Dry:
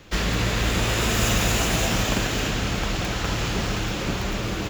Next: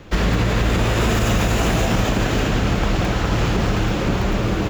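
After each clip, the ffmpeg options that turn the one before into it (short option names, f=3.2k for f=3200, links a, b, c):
-af "highshelf=f=2.1k:g=-10.5,alimiter=limit=-17dB:level=0:latency=1:release=55,volume=8dB"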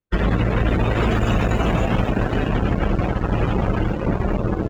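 -af "aeval=exprs='0.376*(cos(1*acos(clip(val(0)/0.376,-1,1)))-cos(1*PI/2))+0.0075*(cos(3*acos(clip(val(0)/0.376,-1,1)))-cos(3*PI/2))+0.0531*(cos(7*acos(clip(val(0)/0.376,-1,1)))-cos(7*PI/2))':c=same,afftdn=nr=20:nf=-24"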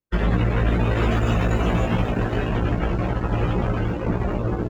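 -filter_complex "[0:a]asplit=2[a][b];[b]adelay=17,volume=-3.5dB[c];[a][c]amix=inputs=2:normalize=0,volume=-4dB"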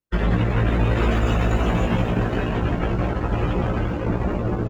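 -af "aecho=1:1:174:0.355"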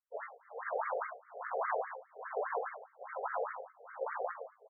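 -af "tremolo=f=1.2:d=0.96,afftfilt=real='re*between(b*sr/1024,550*pow(1600/550,0.5+0.5*sin(2*PI*4.9*pts/sr))/1.41,550*pow(1600/550,0.5+0.5*sin(2*PI*4.9*pts/sr))*1.41)':imag='im*between(b*sr/1024,550*pow(1600/550,0.5+0.5*sin(2*PI*4.9*pts/sr))/1.41,550*pow(1600/550,0.5+0.5*sin(2*PI*4.9*pts/sr))*1.41)':win_size=1024:overlap=0.75,volume=-2dB"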